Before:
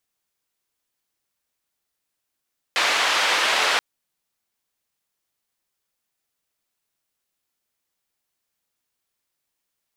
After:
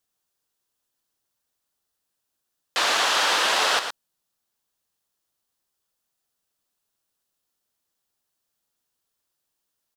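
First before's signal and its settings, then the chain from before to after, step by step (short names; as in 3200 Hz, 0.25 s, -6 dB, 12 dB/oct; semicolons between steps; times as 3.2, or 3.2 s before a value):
noise band 600–3100 Hz, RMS -20.5 dBFS 1.03 s
bell 2200 Hz -7 dB 0.48 oct; echo 0.115 s -8.5 dB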